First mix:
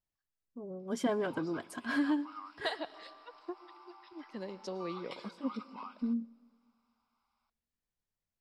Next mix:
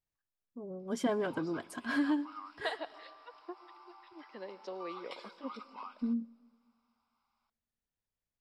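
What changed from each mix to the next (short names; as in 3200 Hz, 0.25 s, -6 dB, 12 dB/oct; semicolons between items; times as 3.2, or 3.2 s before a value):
second voice: add BPF 390–3600 Hz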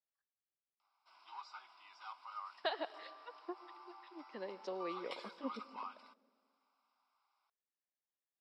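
first voice: muted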